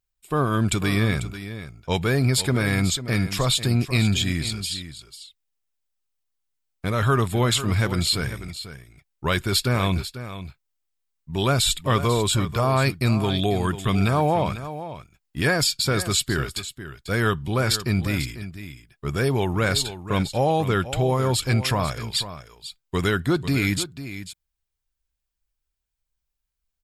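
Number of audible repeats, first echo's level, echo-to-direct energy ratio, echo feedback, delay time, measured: 1, -12.5 dB, -12.5 dB, no steady repeat, 0.494 s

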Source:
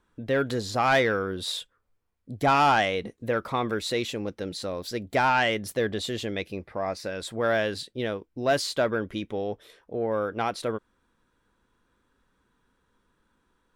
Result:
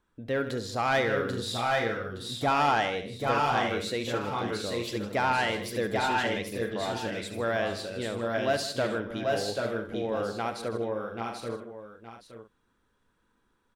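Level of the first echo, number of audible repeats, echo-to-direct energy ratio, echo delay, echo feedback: -11.5 dB, 10, -0.5 dB, 69 ms, no steady repeat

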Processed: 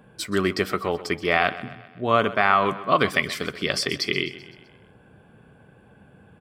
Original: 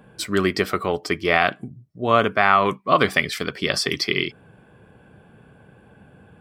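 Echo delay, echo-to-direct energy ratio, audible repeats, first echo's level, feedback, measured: 0.128 s, -14.5 dB, 4, -16.0 dB, 53%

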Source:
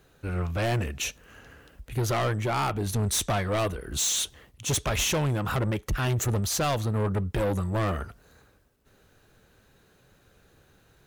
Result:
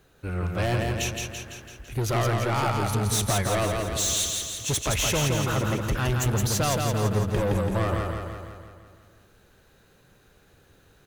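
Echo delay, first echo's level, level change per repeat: 0.168 s, -3.5 dB, -4.5 dB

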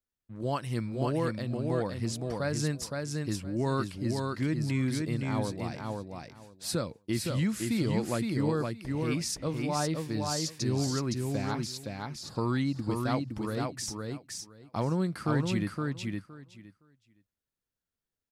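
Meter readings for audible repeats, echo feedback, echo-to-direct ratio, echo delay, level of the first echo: 2, 16%, -3.5 dB, 0.515 s, -3.5 dB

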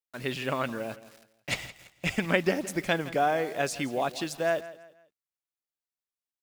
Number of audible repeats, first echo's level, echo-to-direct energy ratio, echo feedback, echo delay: 3, -16.5 dB, -16.0 dB, 35%, 0.166 s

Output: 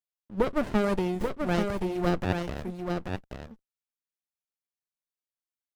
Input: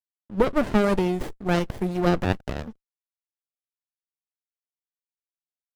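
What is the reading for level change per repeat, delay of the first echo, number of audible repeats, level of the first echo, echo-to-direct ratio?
no steady repeat, 0.835 s, 1, -5.0 dB, -5.0 dB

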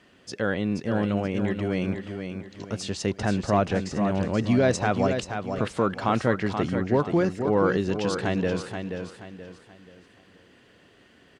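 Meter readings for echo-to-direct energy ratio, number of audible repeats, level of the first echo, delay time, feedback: -6.5 dB, 4, -7.0 dB, 0.479 s, 35%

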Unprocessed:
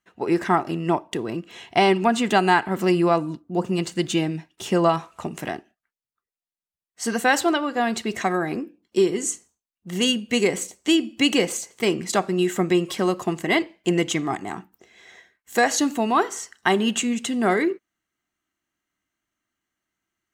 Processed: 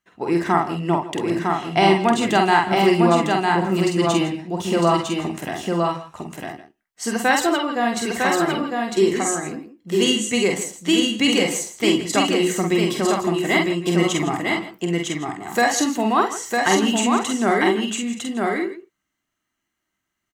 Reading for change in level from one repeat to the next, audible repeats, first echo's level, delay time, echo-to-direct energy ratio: no steady repeat, 5, -3.5 dB, 47 ms, 0.5 dB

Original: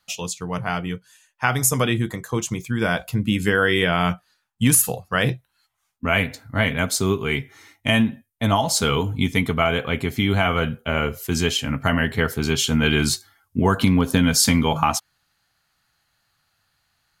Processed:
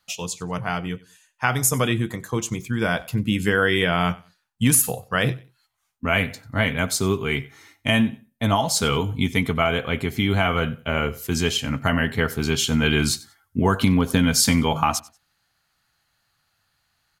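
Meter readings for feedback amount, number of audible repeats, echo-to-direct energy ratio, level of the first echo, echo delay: 24%, 2, -21.5 dB, -21.5 dB, 93 ms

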